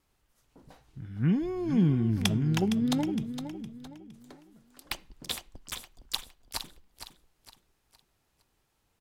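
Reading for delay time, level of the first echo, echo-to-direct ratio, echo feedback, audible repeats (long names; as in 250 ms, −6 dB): 462 ms, −10.0 dB, −9.5 dB, 36%, 3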